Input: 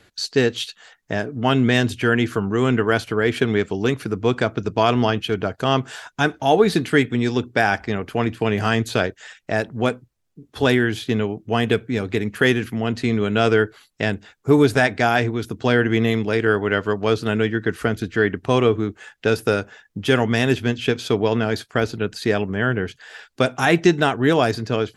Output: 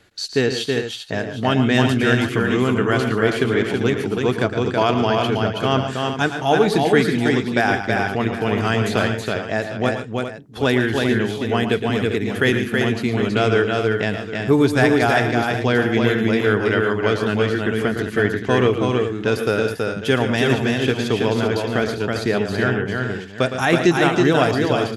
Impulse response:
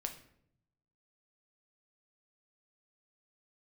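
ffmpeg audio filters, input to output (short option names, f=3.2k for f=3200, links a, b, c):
-filter_complex "[0:a]asettb=1/sr,asplit=3[a][b][c];[a]atrim=end=9.024[d];[b]atrim=start=9.02:end=9.78,asetpts=PTS-STARTPTS,afade=t=in:d=0.004:c=qsin,afade=t=out:st=0.756:d=0.004:c=qsin,lowpass=8.1k[e];[c]atrim=start=9.776[f];[d][e]acrossfade=d=0.004:c1=hsin:c2=qsin[g];[g][f]acrossfade=d=0.004:c1=qsin:c2=hsin,asplit=2[h][i];[i]aecho=0:1:112|143|324|396|759:0.316|0.2|0.668|0.335|0.2[j];[h][j]amix=inputs=2:normalize=0,volume=-1dB"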